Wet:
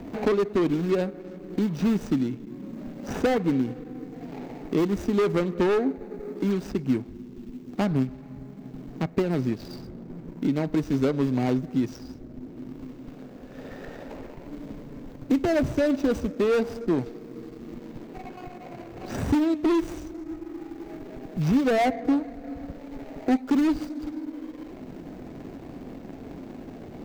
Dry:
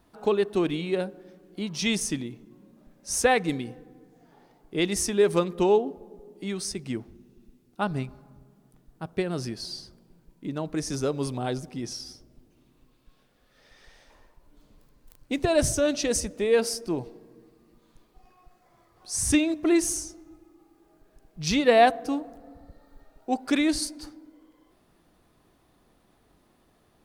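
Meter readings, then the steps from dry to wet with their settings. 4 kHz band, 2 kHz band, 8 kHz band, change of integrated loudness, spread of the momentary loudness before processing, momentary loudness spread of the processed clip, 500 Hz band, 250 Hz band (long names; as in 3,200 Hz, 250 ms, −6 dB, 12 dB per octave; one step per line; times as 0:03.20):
−8.5 dB, −4.0 dB, below −15 dB, 0.0 dB, 17 LU, 18 LU, −0.5 dB, +4.5 dB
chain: running median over 41 samples
parametric band 10,000 Hz −9.5 dB 0.37 octaves
hard clipping −22.5 dBFS, distortion −11 dB
hollow resonant body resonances 260/2,200 Hz, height 7 dB, ringing for 90 ms
multiband upward and downward compressor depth 70%
level +5 dB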